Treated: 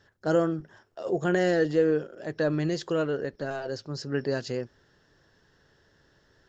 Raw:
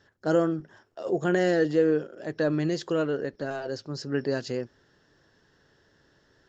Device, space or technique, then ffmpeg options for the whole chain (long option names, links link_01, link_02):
low shelf boost with a cut just above: -af "lowshelf=frequency=70:gain=5.5,equalizer=frequency=280:width_type=o:width=0.77:gain=-2.5"